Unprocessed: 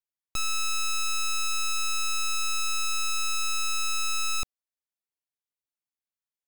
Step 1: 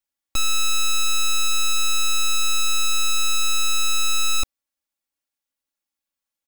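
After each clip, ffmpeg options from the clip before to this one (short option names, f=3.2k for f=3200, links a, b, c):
-af "aecho=1:1:3.6:0.85,volume=4.5dB"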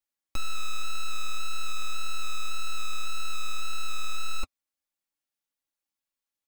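-filter_complex "[0:a]flanger=delay=5.4:depth=8.2:regen=-33:speed=1.8:shape=triangular,acrossover=split=2800[a][b];[b]acompressor=threshold=-34dB:ratio=4:attack=1:release=60[c];[a][c]amix=inputs=2:normalize=0,asoftclip=type=tanh:threshold=-17.5dB"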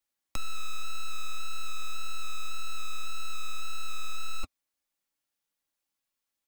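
-filter_complex "[0:a]acrossover=split=320|670|3300[a][b][c][d];[c]acrusher=bits=4:mode=log:mix=0:aa=0.000001[e];[a][b][e][d]amix=inputs=4:normalize=0,aeval=exprs='0.133*(cos(1*acos(clip(val(0)/0.133,-1,1)))-cos(1*PI/2))+0.0422*(cos(2*acos(clip(val(0)/0.133,-1,1)))-cos(2*PI/2))+0.00596*(cos(6*acos(clip(val(0)/0.133,-1,1)))-cos(6*PI/2))':c=same,volume=3.5dB"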